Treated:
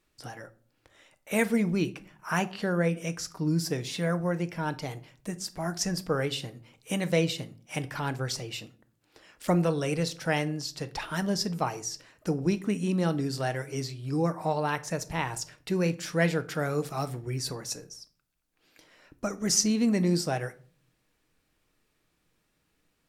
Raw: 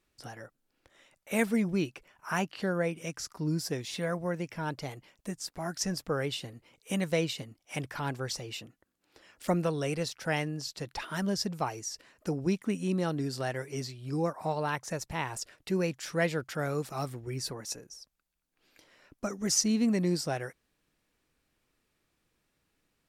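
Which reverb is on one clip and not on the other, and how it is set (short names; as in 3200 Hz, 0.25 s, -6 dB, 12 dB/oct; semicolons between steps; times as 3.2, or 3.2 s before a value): shoebox room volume 400 m³, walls furnished, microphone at 0.52 m; gain +2.5 dB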